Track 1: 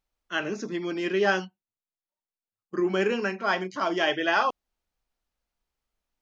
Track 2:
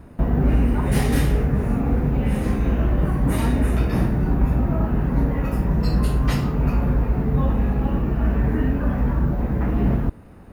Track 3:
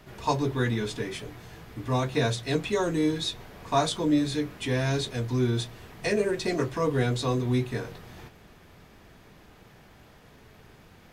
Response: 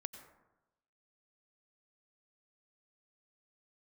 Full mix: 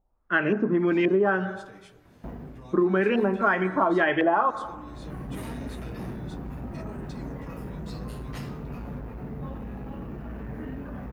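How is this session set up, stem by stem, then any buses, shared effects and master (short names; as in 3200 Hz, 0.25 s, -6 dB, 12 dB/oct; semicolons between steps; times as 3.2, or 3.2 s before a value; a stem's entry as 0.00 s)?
-0.5 dB, 0.00 s, send -3.5 dB, low shelf 410 Hz +11 dB; LFO low-pass saw up 1.9 Hz 700–2600 Hz
-10.5 dB, 2.05 s, no send, soft clip -15.5 dBFS, distortion -15 dB; HPF 110 Hz 6 dB/oct; auto duck -17 dB, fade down 0.45 s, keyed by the first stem
-16.0 dB, 0.70 s, no send, limiter -23.5 dBFS, peak gain reduction 11.5 dB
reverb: on, RT60 1.0 s, pre-delay 82 ms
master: compressor 12:1, threshold -18 dBFS, peak gain reduction 9.5 dB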